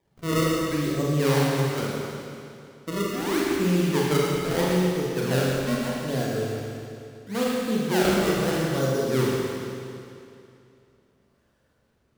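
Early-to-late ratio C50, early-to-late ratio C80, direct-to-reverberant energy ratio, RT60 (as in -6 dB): -2.5 dB, -1.0 dB, -5.0 dB, 2.6 s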